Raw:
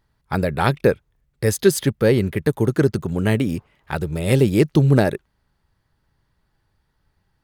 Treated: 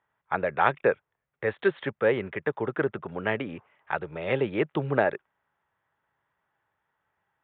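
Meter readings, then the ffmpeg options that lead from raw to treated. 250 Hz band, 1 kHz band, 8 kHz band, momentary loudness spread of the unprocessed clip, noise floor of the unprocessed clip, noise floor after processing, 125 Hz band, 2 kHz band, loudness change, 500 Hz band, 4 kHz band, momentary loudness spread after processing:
-13.0 dB, -1.0 dB, under -40 dB, 11 LU, -70 dBFS, -84 dBFS, -17.5 dB, -1.5 dB, -8.5 dB, -6.5 dB, -11.5 dB, 9 LU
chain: -filter_complex "[0:a]highpass=110,acrossover=split=520 2600:gain=0.158 1 0.112[a][b][c];[a][b][c]amix=inputs=3:normalize=0,aresample=8000,aresample=44100"

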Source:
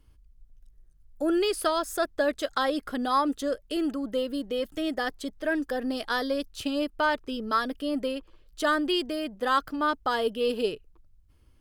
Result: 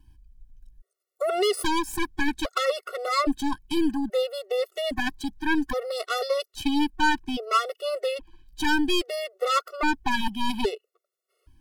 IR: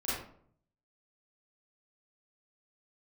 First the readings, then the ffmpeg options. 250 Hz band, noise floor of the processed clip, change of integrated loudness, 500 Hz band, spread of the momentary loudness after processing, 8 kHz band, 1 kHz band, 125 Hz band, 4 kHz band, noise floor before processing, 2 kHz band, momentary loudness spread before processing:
+1.5 dB, -85 dBFS, +1.5 dB, +0.5 dB, 6 LU, +4.0 dB, +1.5 dB, n/a, +3.5 dB, -59 dBFS, +3.0 dB, 6 LU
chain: -af "aeval=exprs='0.299*(cos(1*acos(clip(val(0)/0.299,-1,1)))-cos(1*PI/2))+0.0422*(cos(8*acos(clip(val(0)/0.299,-1,1)))-cos(8*PI/2))':c=same,afftfilt=real='re*gt(sin(2*PI*0.61*pts/sr)*(1-2*mod(floor(b*sr/1024/370),2)),0)':imag='im*gt(sin(2*PI*0.61*pts/sr)*(1-2*mod(floor(b*sr/1024/370),2)),0)':win_size=1024:overlap=0.75,volume=4dB"

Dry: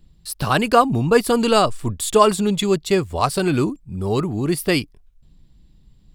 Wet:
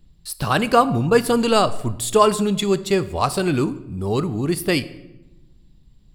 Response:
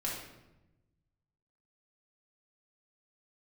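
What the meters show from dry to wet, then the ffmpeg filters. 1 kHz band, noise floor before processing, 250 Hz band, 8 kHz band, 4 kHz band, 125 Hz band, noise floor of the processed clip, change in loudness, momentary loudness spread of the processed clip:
-1.0 dB, -54 dBFS, -0.5 dB, -1.0 dB, -1.0 dB, -0.5 dB, -53 dBFS, -1.0 dB, 9 LU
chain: -filter_complex "[0:a]asplit=2[a][b];[1:a]atrim=start_sample=2205,adelay=26[c];[b][c]afir=irnorm=-1:irlink=0,volume=-17.5dB[d];[a][d]amix=inputs=2:normalize=0,volume=-1dB"

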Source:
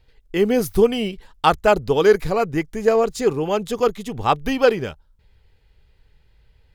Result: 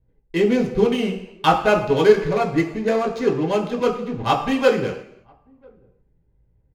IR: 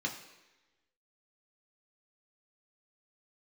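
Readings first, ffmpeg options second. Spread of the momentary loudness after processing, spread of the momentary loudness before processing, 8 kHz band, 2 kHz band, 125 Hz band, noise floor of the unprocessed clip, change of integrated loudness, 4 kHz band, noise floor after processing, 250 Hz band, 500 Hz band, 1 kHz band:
8 LU, 9 LU, n/a, +0.5 dB, +1.5 dB, -58 dBFS, -0.5 dB, 0.0 dB, -63 dBFS, +2.0 dB, -1.0 dB, 0.0 dB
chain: -filter_complex "[0:a]asplit=2[a][b];[b]adelay=991.3,volume=-30dB,highshelf=f=4k:g=-22.3[c];[a][c]amix=inputs=2:normalize=0,adynamicsmooth=sensitivity=6:basefreq=530[d];[1:a]atrim=start_sample=2205,afade=t=out:st=0.41:d=0.01,atrim=end_sample=18522[e];[d][e]afir=irnorm=-1:irlink=0,volume=-3.5dB"

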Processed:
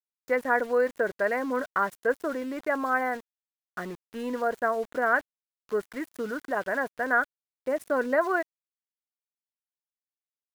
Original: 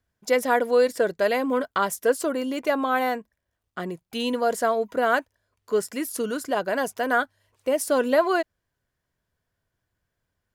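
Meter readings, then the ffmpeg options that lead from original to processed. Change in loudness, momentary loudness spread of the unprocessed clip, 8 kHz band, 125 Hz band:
-4.0 dB, 11 LU, -16.5 dB, n/a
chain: -af "highshelf=f=2.4k:t=q:w=3:g=-10.5,aeval=exprs='val(0)*gte(abs(val(0)),0.0158)':c=same,volume=-5.5dB"

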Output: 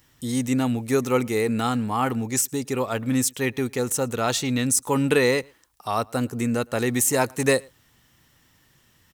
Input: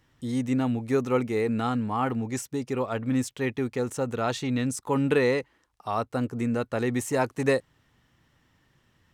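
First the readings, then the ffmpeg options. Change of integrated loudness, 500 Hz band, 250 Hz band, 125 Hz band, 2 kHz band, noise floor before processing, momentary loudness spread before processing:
+4.0 dB, +2.5 dB, +2.5 dB, +2.5 dB, +5.0 dB, -68 dBFS, 6 LU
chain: -filter_complex "[0:a]aemphasis=mode=production:type=75kf,asplit=2[a][b];[b]adelay=110.8,volume=-28dB,highshelf=f=4k:g=-2.49[c];[a][c]amix=inputs=2:normalize=0,volume=2.5dB"

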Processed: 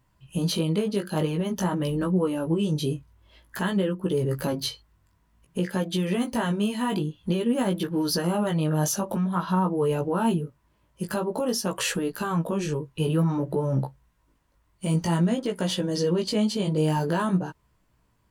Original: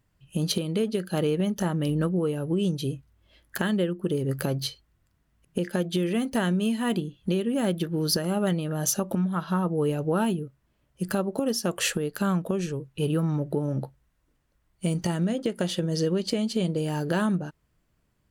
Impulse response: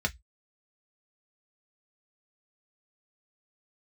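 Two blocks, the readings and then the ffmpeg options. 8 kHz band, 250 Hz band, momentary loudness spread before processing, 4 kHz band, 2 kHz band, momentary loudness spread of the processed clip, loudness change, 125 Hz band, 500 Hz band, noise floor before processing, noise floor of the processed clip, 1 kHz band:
-0.5 dB, +1.0 dB, 6 LU, +0.5 dB, 0.0 dB, 6 LU, +1.0 dB, +1.5 dB, +1.0 dB, -71 dBFS, -67 dBFS, +4.0 dB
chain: -af "equalizer=f=980:t=o:w=0.3:g=9.5,alimiter=limit=-20.5dB:level=0:latency=1:release=11,flanger=delay=15.5:depth=4.3:speed=0.51,volume=6dB"

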